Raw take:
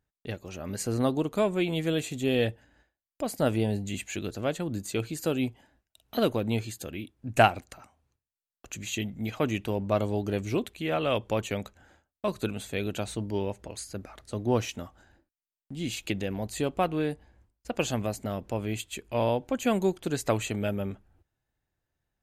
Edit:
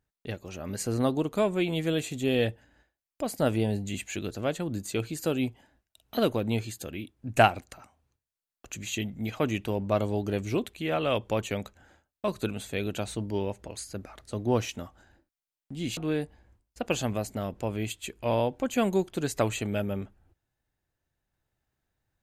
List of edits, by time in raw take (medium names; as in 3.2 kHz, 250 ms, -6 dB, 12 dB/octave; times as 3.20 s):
15.97–16.86 s: delete